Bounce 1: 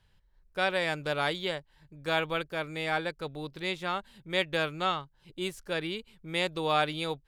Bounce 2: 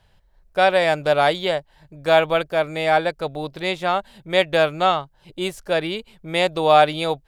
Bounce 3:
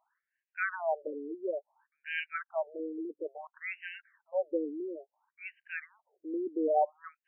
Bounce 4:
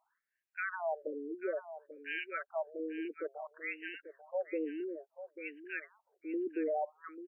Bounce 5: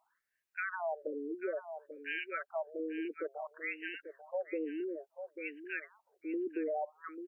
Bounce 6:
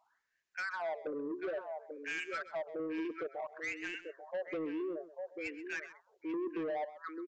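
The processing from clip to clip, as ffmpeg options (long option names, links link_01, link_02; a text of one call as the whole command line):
ffmpeg -i in.wav -af "equalizer=frequency=670:width=2.3:gain=10.5,volume=7.5dB" out.wav
ffmpeg -i in.wav -af "asubboost=boost=8.5:cutoff=210,afftfilt=real='re*between(b*sr/1024,320*pow(2200/320,0.5+0.5*sin(2*PI*0.58*pts/sr))/1.41,320*pow(2200/320,0.5+0.5*sin(2*PI*0.58*pts/sr))*1.41)':imag='im*between(b*sr/1024,320*pow(2200/320,0.5+0.5*sin(2*PI*0.58*pts/sr))/1.41,320*pow(2200/320,0.5+0.5*sin(2*PI*0.58*pts/sr))*1.41)':win_size=1024:overlap=0.75,volume=-8dB" out.wav
ffmpeg -i in.wav -af "alimiter=level_in=2dB:limit=-24dB:level=0:latency=1:release=44,volume=-2dB,aecho=1:1:840:0.251,volume=-1.5dB" out.wav
ffmpeg -i in.wav -af "acompressor=threshold=-38dB:ratio=2,volume=2.5dB" out.wav
ffmpeg -i in.wav -af "aresample=16000,asoftclip=type=tanh:threshold=-36dB,aresample=44100,aecho=1:1:130:0.178,volume=3dB" out.wav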